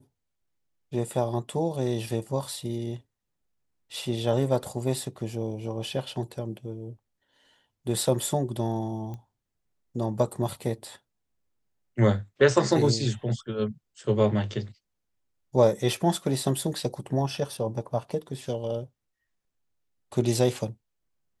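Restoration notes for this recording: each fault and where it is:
9.14 pop -27 dBFS

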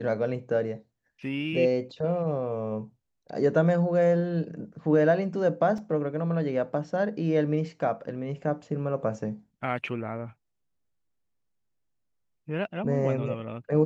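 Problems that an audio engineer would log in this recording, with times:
5.78 gap 3.1 ms

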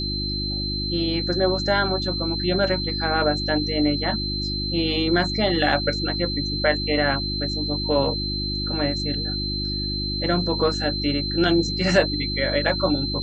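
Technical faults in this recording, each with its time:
hum 50 Hz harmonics 7 -29 dBFS
tone 4100 Hz -27 dBFS

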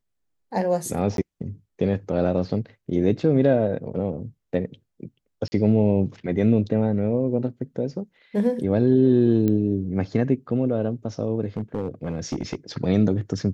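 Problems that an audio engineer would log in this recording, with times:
1.17–1.18 gap 12 ms
5.48–5.52 gap 40 ms
9.48 pop -13 dBFS
11.57–12.55 clipped -21 dBFS

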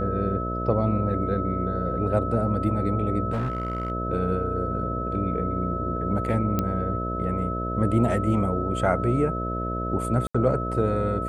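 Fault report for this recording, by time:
buzz 60 Hz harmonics 11 -30 dBFS
tone 1300 Hz -30 dBFS
3.32–3.92 clipped -22.5 dBFS
6.59 pop -11 dBFS
10.27–10.35 gap 75 ms

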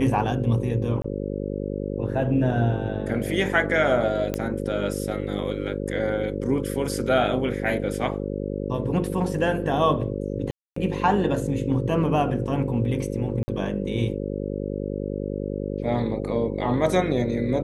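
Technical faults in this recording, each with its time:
buzz 50 Hz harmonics 11 -29 dBFS
1.02–1.04 gap 24 ms
4.34 pop -12 dBFS
10.51–10.76 gap 0.254 s
13.43–13.48 gap 50 ms

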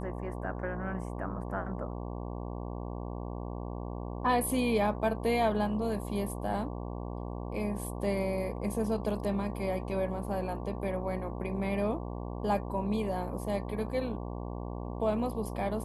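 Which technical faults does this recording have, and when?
buzz 60 Hz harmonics 19 -38 dBFS

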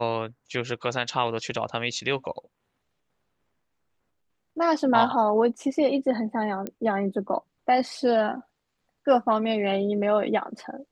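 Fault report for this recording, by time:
6.67 pop -18 dBFS

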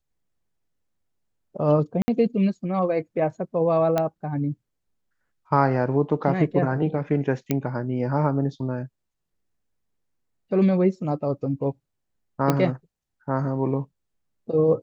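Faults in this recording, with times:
2.02–2.08 gap 60 ms
3.98 pop -10 dBFS
7.51 pop -9 dBFS
12.5 pop -7 dBFS

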